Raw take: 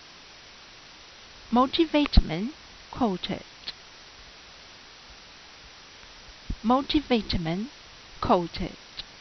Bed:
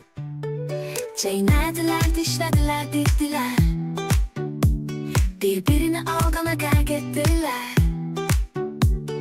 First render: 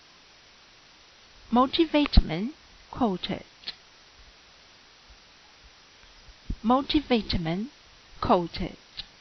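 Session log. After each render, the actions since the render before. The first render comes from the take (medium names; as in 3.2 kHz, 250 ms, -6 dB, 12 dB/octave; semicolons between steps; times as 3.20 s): noise print and reduce 6 dB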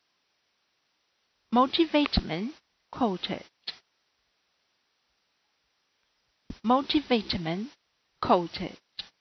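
high-pass 190 Hz 6 dB/octave; gate -43 dBFS, range -20 dB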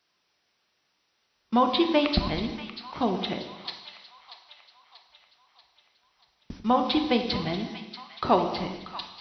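two-band feedback delay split 940 Hz, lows 95 ms, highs 636 ms, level -12 dB; gated-style reverb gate 420 ms falling, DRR 5.5 dB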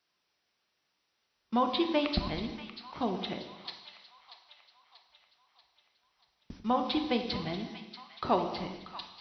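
trim -6 dB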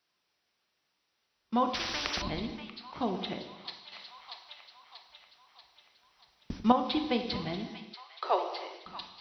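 1.74–2.22 s: spectrum-flattening compressor 10:1; 3.92–6.72 s: gain +7.5 dB; 7.94–8.86 s: steep high-pass 380 Hz 48 dB/octave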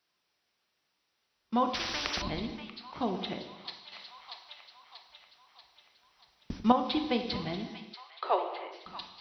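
8.10–8.71 s: low-pass 4.9 kHz -> 2.8 kHz 24 dB/octave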